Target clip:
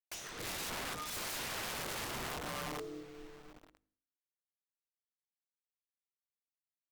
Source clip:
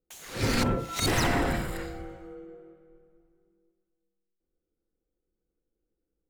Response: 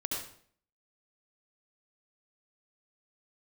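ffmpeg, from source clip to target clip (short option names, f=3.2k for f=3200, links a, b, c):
-filter_complex "[0:a]acrusher=bits=9:mix=0:aa=0.000001,equalizer=f=13k:w=0.89:g=-10.5,areverse,acompressor=threshold=-38dB:ratio=16,areverse,aeval=exprs='(mod(112*val(0)+1,2)-1)/112':c=same,bandreject=f=57.19:t=h:w=4,bandreject=f=114.38:t=h:w=4,bandreject=f=171.57:t=h:w=4,bandreject=f=228.76:t=h:w=4,bandreject=f=285.95:t=h:w=4,bandreject=f=343.14:t=h:w=4,bandreject=f=400.33:t=h:w=4,bandreject=f=457.52:t=h:w=4,bandreject=f=514.71:t=h:w=4,bandreject=f=571.9:t=h:w=4,asetrate=40131,aresample=44100,asplit=2[a][b];[1:a]atrim=start_sample=2205[c];[b][c]afir=irnorm=-1:irlink=0,volume=-25.5dB[d];[a][d]amix=inputs=2:normalize=0,volume=5dB"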